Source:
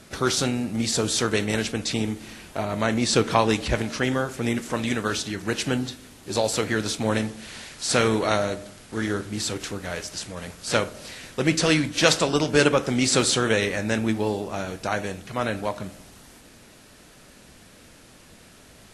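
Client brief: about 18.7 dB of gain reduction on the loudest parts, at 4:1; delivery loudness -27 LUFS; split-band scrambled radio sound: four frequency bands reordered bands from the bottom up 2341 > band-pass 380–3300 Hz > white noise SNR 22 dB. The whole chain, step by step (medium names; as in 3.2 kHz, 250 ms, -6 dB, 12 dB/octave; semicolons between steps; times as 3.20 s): compression 4:1, threshold -37 dBFS; four frequency bands reordered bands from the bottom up 2341; band-pass 380–3300 Hz; white noise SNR 22 dB; trim +15.5 dB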